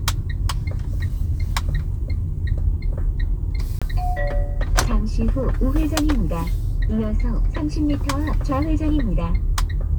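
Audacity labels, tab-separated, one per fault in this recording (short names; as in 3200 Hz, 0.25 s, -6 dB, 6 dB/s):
3.790000	3.820000	gap 26 ms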